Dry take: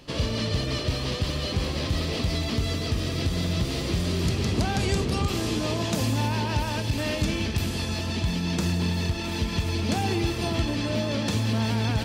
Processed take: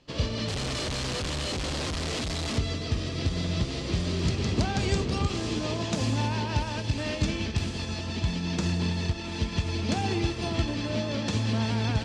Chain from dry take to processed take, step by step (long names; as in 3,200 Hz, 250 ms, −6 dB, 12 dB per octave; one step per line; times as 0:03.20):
0:00.48–0:02.58: sign of each sample alone
low-pass filter 8,000 Hz 24 dB per octave
expander for the loud parts 1.5 to 1, over −43 dBFS